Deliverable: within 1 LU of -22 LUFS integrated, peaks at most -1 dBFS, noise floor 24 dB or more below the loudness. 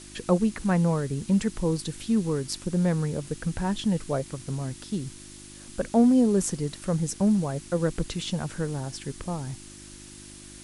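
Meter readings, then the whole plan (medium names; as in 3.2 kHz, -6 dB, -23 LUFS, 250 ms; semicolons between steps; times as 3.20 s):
hum 50 Hz; highest harmonic 350 Hz; hum level -48 dBFS; noise floor -46 dBFS; noise floor target -51 dBFS; loudness -27.0 LUFS; peak level -10.0 dBFS; loudness target -22.0 LUFS
-> de-hum 50 Hz, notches 7; noise reduction 6 dB, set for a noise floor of -46 dBFS; trim +5 dB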